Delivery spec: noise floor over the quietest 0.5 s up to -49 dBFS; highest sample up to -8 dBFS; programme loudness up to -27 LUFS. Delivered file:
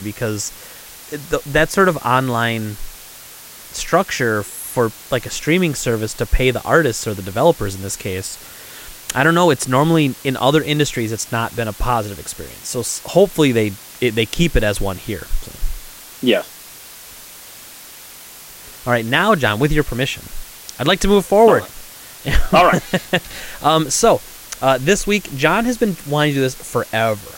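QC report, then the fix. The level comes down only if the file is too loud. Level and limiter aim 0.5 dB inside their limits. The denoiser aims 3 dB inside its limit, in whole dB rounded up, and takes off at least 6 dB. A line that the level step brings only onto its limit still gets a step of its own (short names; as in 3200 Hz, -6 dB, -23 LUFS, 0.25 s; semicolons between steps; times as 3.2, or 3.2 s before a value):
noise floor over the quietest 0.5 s -38 dBFS: fail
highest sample -1.5 dBFS: fail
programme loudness -17.5 LUFS: fail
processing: denoiser 6 dB, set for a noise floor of -38 dBFS; gain -10 dB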